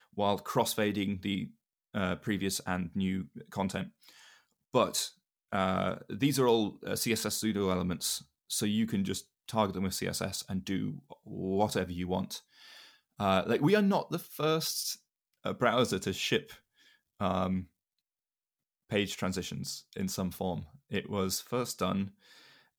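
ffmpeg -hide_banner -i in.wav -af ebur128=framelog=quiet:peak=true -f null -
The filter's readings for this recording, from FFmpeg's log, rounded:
Integrated loudness:
  I:         -32.3 LUFS
  Threshold: -42.8 LUFS
Loudness range:
  LRA:         5.1 LU
  Threshold: -53.0 LUFS
  LRA low:   -35.9 LUFS
  LRA high:  -30.8 LUFS
True peak:
  Peak:      -12.3 dBFS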